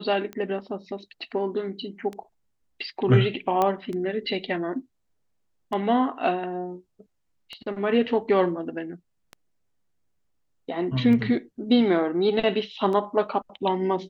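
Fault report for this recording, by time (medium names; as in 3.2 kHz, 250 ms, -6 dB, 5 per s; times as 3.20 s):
tick 33 1/3 rpm -22 dBFS
3.62 s: pop -11 dBFS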